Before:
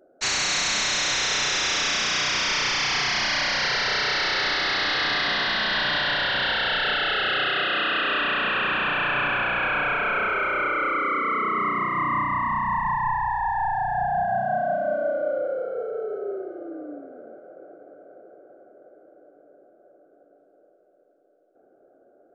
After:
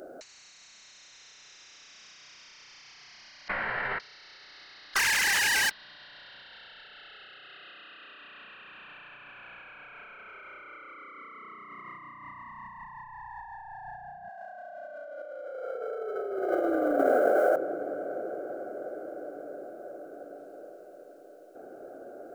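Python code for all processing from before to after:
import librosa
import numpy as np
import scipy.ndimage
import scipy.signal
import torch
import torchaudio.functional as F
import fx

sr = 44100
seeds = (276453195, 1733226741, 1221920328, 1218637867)

y = fx.chain(x, sr, fx.lowpass(hz=1800.0, slope=24),
    fx.detune_double(cents=21), at=(3.48, 4.0))
y = fx.chain(y, sr, fx.sine_speech(),
    fx.highpass(hz=520.0, slope=12),
    fx.tube_stage(drive_db=36.0, bias=0.75), at=(4.94, 5.71))
y = fx.chain(y, sr, fx.highpass(hz=480.0, slope=12),
    fx.high_shelf(hz=5800.0, db=11.0),
    fx.env_flatten(amount_pct=50), at=(14.29, 17.56))
y = fx.high_shelf(y, sr, hz=2100.0, db=9.0)
y = fx.notch(y, sr, hz=3400.0, q=16.0)
y = fx.over_compress(y, sr, threshold_db=-34.0, ratio=-0.5)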